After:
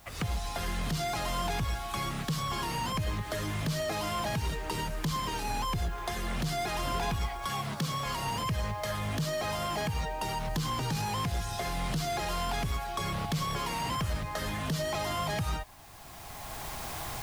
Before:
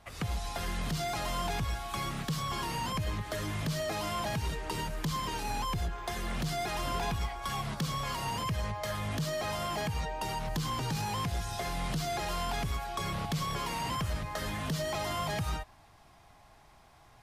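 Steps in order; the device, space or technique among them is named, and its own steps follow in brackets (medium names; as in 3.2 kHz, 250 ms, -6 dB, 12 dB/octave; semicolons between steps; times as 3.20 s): 7.46–8.06 s: high-pass 99 Hz; cheap recorder with automatic gain (white noise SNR 28 dB; recorder AGC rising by 16 dB/s); trim +1.5 dB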